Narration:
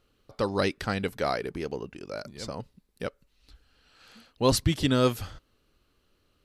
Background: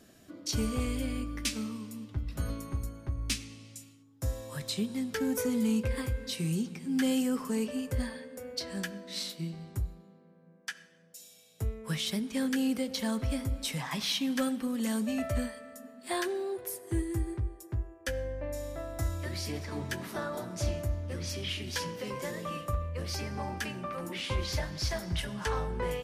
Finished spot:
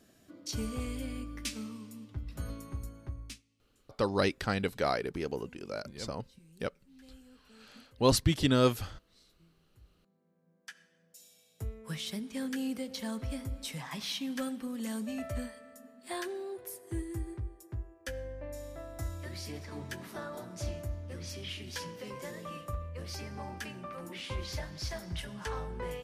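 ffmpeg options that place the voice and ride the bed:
-filter_complex "[0:a]adelay=3600,volume=-2dB[a];[1:a]volume=18dB,afade=t=out:st=3.06:d=0.36:silence=0.0668344,afade=t=in:st=9.79:d=1.45:silence=0.0707946[b];[a][b]amix=inputs=2:normalize=0"

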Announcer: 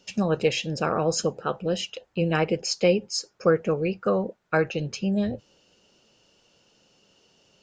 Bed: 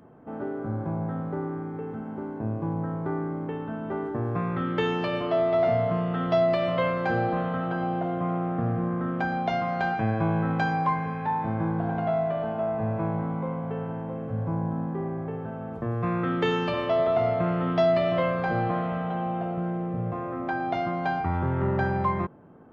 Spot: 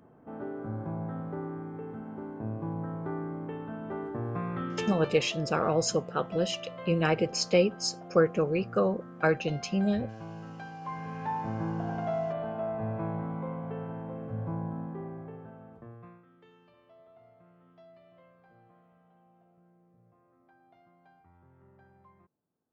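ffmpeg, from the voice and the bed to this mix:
-filter_complex "[0:a]adelay=4700,volume=-2.5dB[a];[1:a]volume=6.5dB,afade=t=out:st=4.59:d=0.73:silence=0.251189,afade=t=in:st=10.8:d=0.42:silence=0.251189,afade=t=out:st=14.47:d=1.77:silence=0.0354813[b];[a][b]amix=inputs=2:normalize=0"

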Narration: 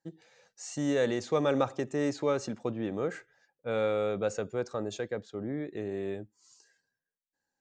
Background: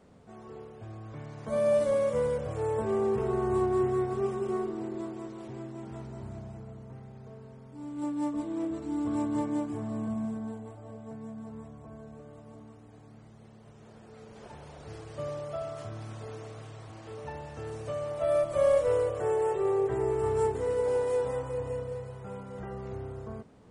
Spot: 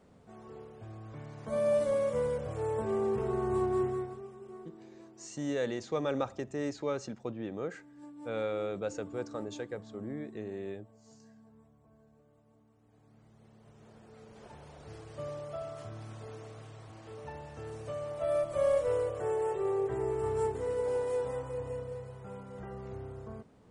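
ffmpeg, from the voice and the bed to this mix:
-filter_complex "[0:a]adelay=4600,volume=-5dB[a];[1:a]volume=9.5dB,afade=t=out:st=3.79:d=0.44:silence=0.211349,afade=t=in:st=12.7:d=1.13:silence=0.237137[b];[a][b]amix=inputs=2:normalize=0"

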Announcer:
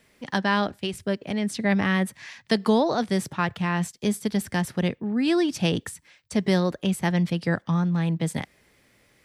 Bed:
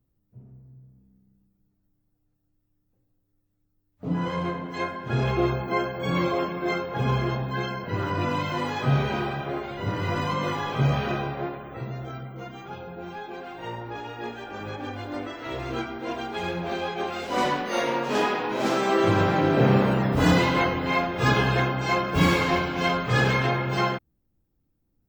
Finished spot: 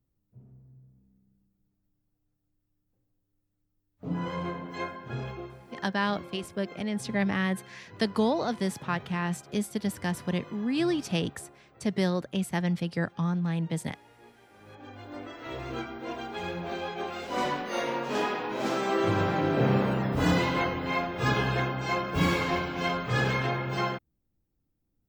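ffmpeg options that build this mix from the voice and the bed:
-filter_complex "[0:a]adelay=5500,volume=-5dB[a];[1:a]volume=10.5dB,afade=t=out:st=4.81:d=0.67:silence=0.16788,afade=t=in:st=14.56:d=0.95:silence=0.16788[b];[a][b]amix=inputs=2:normalize=0"

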